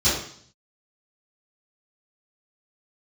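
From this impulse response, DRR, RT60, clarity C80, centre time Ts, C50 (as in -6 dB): -15.5 dB, 0.60 s, 6.5 dB, 49 ms, 2.5 dB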